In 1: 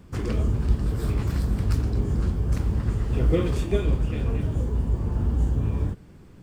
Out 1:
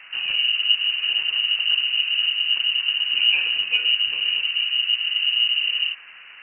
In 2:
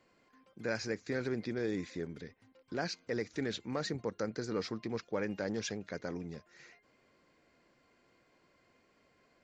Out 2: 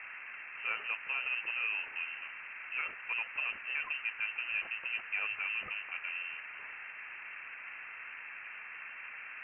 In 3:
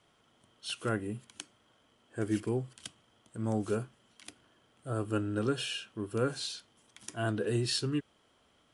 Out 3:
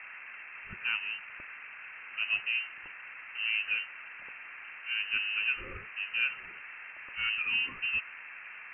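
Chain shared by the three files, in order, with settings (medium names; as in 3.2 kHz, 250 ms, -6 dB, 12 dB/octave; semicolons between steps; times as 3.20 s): band noise 130–1500 Hz -45 dBFS; distance through air 320 m; frequency inversion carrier 2.9 kHz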